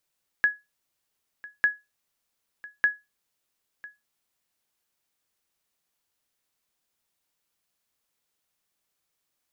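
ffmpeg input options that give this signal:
-f lavfi -i "aevalsrc='0.237*(sin(2*PI*1680*mod(t,1.2))*exp(-6.91*mod(t,1.2)/0.21)+0.0891*sin(2*PI*1680*max(mod(t,1.2)-1,0))*exp(-6.91*max(mod(t,1.2)-1,0)/0.21))':d=3.6:s=44100"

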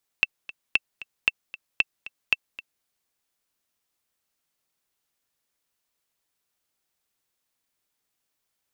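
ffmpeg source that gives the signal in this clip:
-f lavfi -i "aevalsrc='pow(10,(-5.5-18*gte(mod(t,2*60/229),60/229))/20)*sin(2*PI*2670*mod(t,60/229))*exp(-6.91*mod(t,60/229)/0.03)':d=2.62:s=44100"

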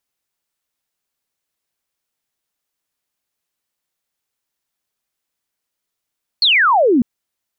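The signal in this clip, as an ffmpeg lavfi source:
-f lavfi -i "aevalsrc='0.335*clip(t/0.002,0,1)*clip((0.6-t)/0.002,0,1)*sin(2*PI*4500*0.6/log(220/4500)*(exp(log(220/4500)*t/0.6)-1))':d=0.6:s=44100"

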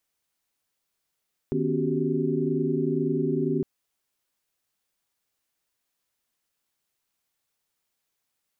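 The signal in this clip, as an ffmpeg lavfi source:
-f lavfi -i "aevalsrc='0.0355*(sin(2*PI*155.56*t)+sin(2*PI*246.94*t)+sin(2*PI*277.18*t)+sin(2*PI*369.99*t)+sin(2*PI*392*t))':d=2.11:s=44100"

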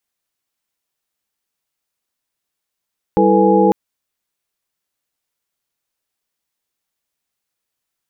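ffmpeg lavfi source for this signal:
-f lavfi -i "aevalsrc='0.168*(sin(2*PI*196*t)+sin(2*PI*329.63*t)+sin(2*PI*440*t)+sin(2*PI*493.88*t)+sin(2*PI*830.61*t))':d=0.55:s=44100"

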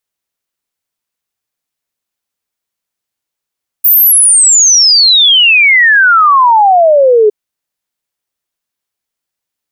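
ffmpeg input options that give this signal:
-f lavfi -i "aevalsrc='0.708*clip(min(t,3.46-t)/0.01,0,1)*sin(2*PI*15000*3.46/log(410/15000)*(exp(log(410/15000)*t/3.46)-1))':d=3.46:s=44100"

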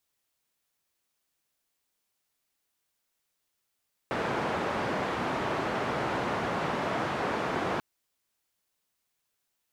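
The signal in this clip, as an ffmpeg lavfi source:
-f lavfi -i "anoisesrc=c=white:d=3.69:r=44100:seed=1,highpass=f=110,lowpass=f=1100,volume=-12.7dB"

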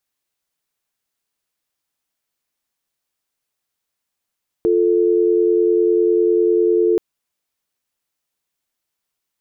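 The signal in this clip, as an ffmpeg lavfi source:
-f lavfi -i "aevalsrc='0.178*(sin(2*PI*350*t)+sin(2*PI*440*t))':d=2.33:s=44100"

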